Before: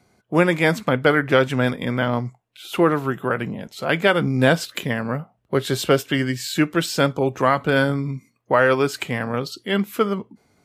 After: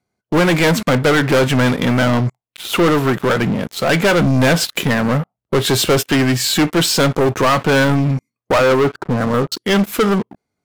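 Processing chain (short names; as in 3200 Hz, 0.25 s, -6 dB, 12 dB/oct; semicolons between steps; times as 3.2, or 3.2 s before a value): 8.58–9.52 steep low-pass 1500 Hz 72 dB/oct; sample leveller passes 5; gain -6 dB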